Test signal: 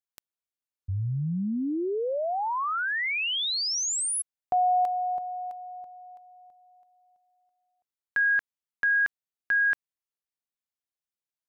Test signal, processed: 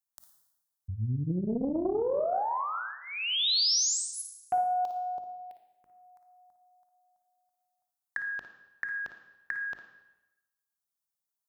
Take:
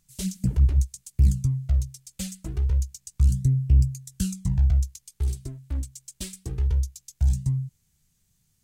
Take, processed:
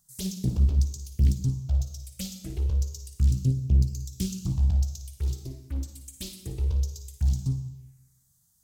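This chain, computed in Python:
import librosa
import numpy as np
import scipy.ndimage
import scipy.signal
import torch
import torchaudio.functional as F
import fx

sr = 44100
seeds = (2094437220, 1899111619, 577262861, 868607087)

y = fx.highpass(x, sr, hz=66.0, slope=6)
y = fx.high_shelf(y, sr, hz=6900.0, db=7.0)
y = fx.hum_notches(y, sr, base_hz=50, count=8)
y = fx.env_phaser(y, sr, low_hz=410.0, high_hz=1900.0, full_db=-29.0)
y = fx.room_flutter(y, sr, wall_m=9.6, rt60_s=0.29)
y = fx.rev_freeverb(y, sr, rt60_s=0.98, hf_ratio=1.0, predelay_ms=5, drr_db=7.0)
y = fx.doppler_dist(y, sr, depth_ms=0.93)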